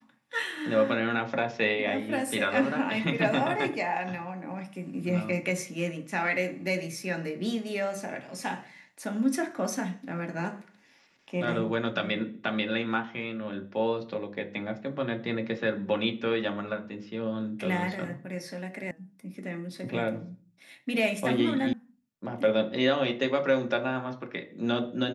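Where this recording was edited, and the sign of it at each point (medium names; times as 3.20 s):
18.91 s: sound stops dead
21.73 s: sound stops dead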